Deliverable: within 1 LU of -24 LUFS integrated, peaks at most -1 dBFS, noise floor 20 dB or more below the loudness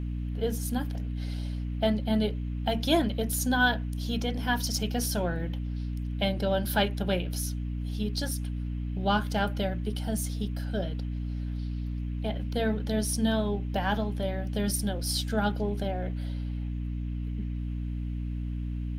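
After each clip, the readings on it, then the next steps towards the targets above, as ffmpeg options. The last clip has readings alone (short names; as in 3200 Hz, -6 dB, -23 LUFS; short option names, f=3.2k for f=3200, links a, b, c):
hum 60 Hz; harmonics up to 300 Hz; hum level -30 dBFS; loudness -30.5 LUFS; peak -11.0 dBFS; loudness target -24.0 LUFS
-> -af "bandreject=f=60:t=h:w=6,bandreject=f=120:t=h:w=6,bandreject=f=180:t=h:w=6,bandreject=f=240:t=h:w=6,bandreject=f=300:t=h:w=6"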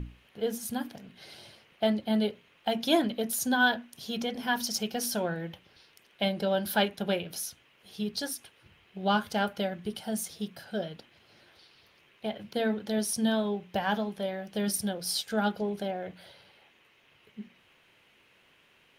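hum none; loudness -31.0 LUFS; peak -12.0 dBFS; loudness target -24.0 LUFS
-> -af "volume=7dB"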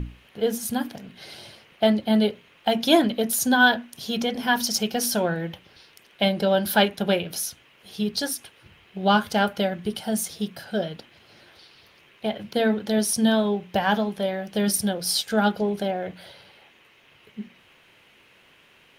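loudness -24.0 LUFS; peak -5.0 dBFS; noise floor -57 dBFS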